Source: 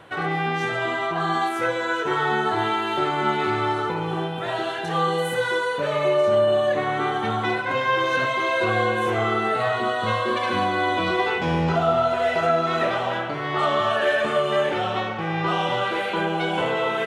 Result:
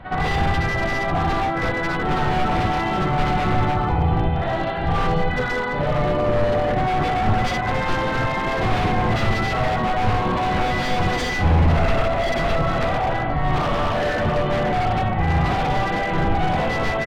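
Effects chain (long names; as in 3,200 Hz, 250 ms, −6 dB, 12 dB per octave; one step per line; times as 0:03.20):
sub-octave generator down 1 octave, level −3 dB
pitch-shifted copies added −5 semitones −17 dB, −3 semitones −7 dB, +3 semitones −17 dB
parametric band 420 Hz −7 dB 0.88 octaves
backwards echo 63 ms −7 dB
downsampling to 11,025 Hz
hollow resonant body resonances 740/2,000 Hz, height 11 dB, ringing for 45 ms
wave folding −17.5 dBFS
spectral tilt −3 dB per octave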